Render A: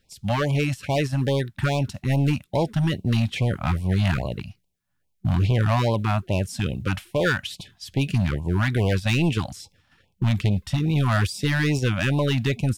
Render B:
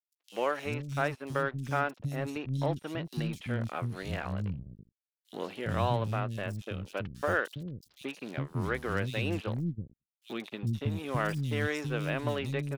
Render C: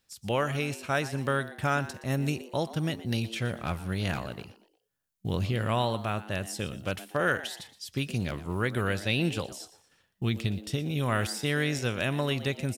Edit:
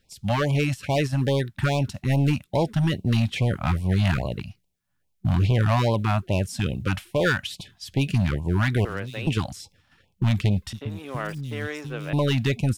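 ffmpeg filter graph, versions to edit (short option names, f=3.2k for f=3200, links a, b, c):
-filter_complex "[1:a]asplit=2[a][b];[0:a]asplit=3[c][d][e];[c]atrim=end=8.852[f];[a]atrim=start=8.848:end=9.272[g];[d]atrim=start=9.268:end=10.732[h];[b]atrim=start=10.728:end=12.132[i];[e]atrim=start=12.128[j];[f][g]acrossfade=d=0.004:c1=hsin:c2=hsin[k];[k][h]acrossfade=d=0.004:c1=hsin:c2=hsin[l];[l][i]acrossfade=d=0.004:c1=hsin:c2=hsin[m];[m][j]acrossfade=d=0.004:c1=hsin:c2=hsin"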